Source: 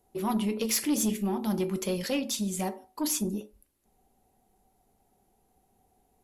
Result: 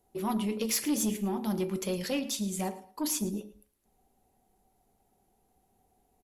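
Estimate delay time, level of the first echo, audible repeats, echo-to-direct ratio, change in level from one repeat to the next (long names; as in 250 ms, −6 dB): 111 ms, −17.0 dB, 2, −17.0 dB, −12.5 dB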